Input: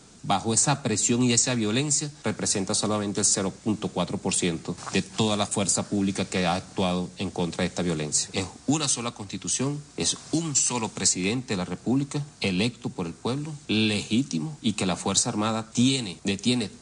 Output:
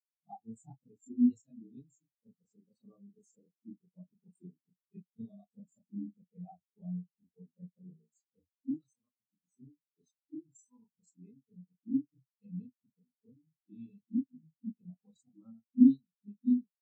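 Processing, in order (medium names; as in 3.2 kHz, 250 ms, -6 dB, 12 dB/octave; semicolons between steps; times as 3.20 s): short-time spectra conjugated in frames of 89 ms; spectral contrast expander 4:1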